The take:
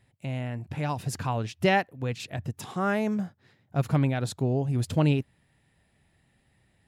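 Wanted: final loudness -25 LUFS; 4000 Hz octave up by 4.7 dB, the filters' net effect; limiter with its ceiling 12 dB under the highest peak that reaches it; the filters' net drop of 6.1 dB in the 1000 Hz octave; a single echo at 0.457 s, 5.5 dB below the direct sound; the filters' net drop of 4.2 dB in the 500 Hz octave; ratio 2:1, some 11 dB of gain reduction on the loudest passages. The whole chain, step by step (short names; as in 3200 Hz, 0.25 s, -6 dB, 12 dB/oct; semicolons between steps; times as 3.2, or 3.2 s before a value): bell 500 Hz -3.5 dB; bell 1000 Hz -7.5 dB; bell 4000 Hz +7 dB; compressor 2:1, threshold -40 dBFS; limiter -33.5 dBFS; echo 0.457 s -5.5 dB; gain +17.5 dB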